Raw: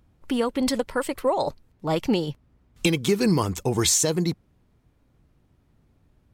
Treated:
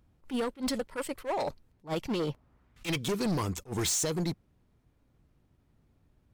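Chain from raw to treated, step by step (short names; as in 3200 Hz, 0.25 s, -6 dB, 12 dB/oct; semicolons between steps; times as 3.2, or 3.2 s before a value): 2.19–3.03 bell 510 Hz -> 3500 Hz +9 dB 2 oct; overloaded stage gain 21.5 dB; attack slew limiter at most 310 dB/s; gain -5 dB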